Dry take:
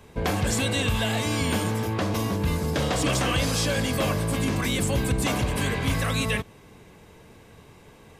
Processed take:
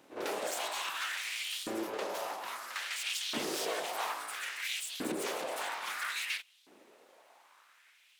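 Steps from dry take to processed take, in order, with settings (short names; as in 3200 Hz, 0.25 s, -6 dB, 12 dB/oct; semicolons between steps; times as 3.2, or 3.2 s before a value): reverse echo 53 ms -10 dB; full-wave rectifier; LFO high-pass saw up 0.6 Hz 260–3900 Hz; gain -8.5 dB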